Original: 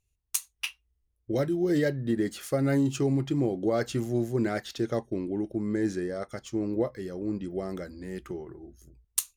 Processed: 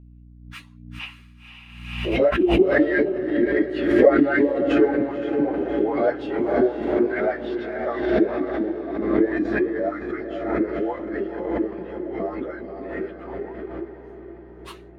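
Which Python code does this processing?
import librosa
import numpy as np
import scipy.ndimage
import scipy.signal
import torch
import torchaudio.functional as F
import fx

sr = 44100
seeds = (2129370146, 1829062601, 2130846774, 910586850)

y = fx.high_shelf(x, sr, hz=11000.0, db=-8.0)
y = fx.filter_lfo_highpass(y, sr, shape='saw_up', hz=8.0, low_hz=260.0, high_hz=2500.0, q=3.6)
y = fx.add_hum(y, sr, base_hz=60, snr_db=24)
y = fx.stretch_vocoder_free(y, sr, factor=1.6)
y = fx.air_absorb(y, sr, metres=440.0)
y = fx.echo_diffused(y, sr, ms=523, feedback_pct=57, wet_db=-7.0)
y = fx.pre_swell(y, sr, db_per_s=53.0)
y = y * 10.0 ** (6.5 / 20.0)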